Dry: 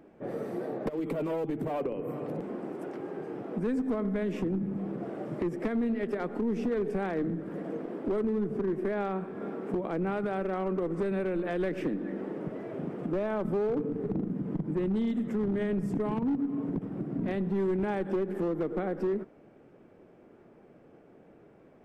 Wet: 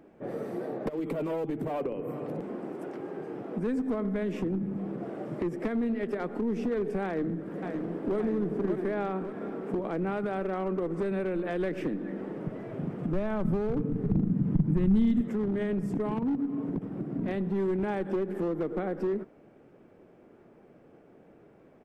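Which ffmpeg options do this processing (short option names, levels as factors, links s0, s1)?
-filter_complex "[0:a]asplit=2[s0][s1];[s1]afade=t=in:st=7.05:d=0.01,afade=t=out:st=8.18:d=0.01,aecho=0:1:570|1140|1710|2280|2850|3420|3990|4560|5130:0.595662|0.357397|0.214438|0.128663|0.0771978|0.0463187|0.0277912|0.0166747|0.0100048[s2];[s0][s2]amix=inputs=2:normalize=0,asettb=1/sr,asplit=3[s3][s4][s5];[s3]atrim=end=11.704[s6];[s4]atrim=start=11.7:end=15.21,asetpts=PTS-STARTPTS,afade=t=in:d=0.004:c=qsin,afade=t=out:st=3.506:d=0.004:c=qsin,asubboost=boost=7.5:cutoff=170[s7];[s5]atrim=start=15.206[s8];[s6][s7]acrossfade=d=0.004:c1=hsin:c2=qsin[s9];[s9][s8]acrossfade=d=0.004:c1=qsin:c2=hsin"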